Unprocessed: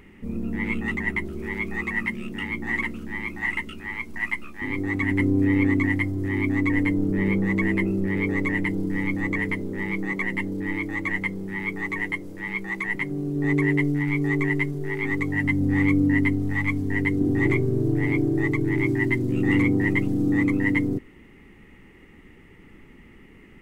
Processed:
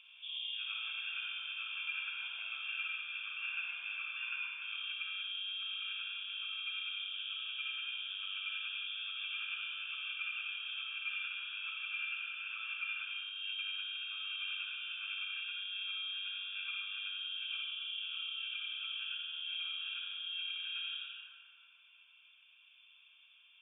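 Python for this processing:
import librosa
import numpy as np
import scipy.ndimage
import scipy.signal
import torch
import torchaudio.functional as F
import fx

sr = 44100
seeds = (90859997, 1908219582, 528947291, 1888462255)

y = fx.formant_cascade(x, sr, vowel='a')
y = fx.freq_invert(y, sr, carrier_hz=3500)
y = fx.rev_freeverb(y, sr, rt60_s=2.9, hf_ratio=0.4, predelay_ms=15, drr_db=-4.0)
y = fx.rider(y, sr, range_db=10, speed_s=0.5)
y = y * librosa.db_to_amplitude(3.0)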